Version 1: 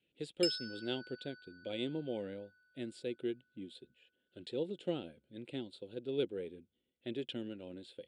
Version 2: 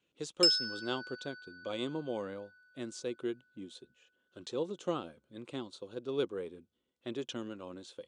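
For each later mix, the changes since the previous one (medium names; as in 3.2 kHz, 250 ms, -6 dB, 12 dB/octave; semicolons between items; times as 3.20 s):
master: remove static phaser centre 2.7 kHz, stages 4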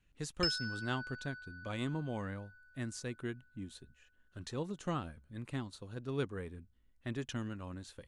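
background: add distance through air 180 m; master: remove cabinet simulation 230–8500 Hz, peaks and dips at 360 Hz +7 dB, 510 Hz +8 dB, 1.8 kHz -9 dB, 3.4 kHz +7 dB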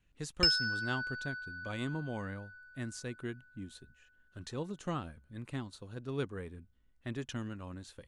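background +7.5 dB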